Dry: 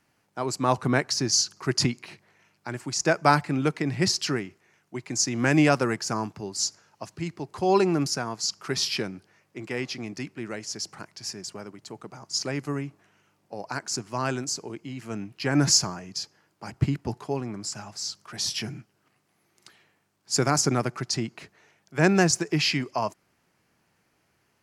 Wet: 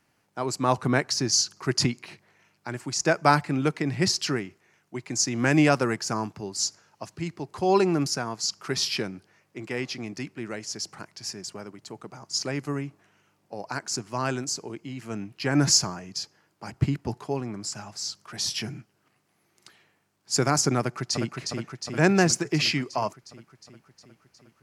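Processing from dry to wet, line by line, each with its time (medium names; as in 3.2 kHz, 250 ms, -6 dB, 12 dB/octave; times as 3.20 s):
20.79–21.35 s: echo throw 360 ms, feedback 70%, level -4.5 dB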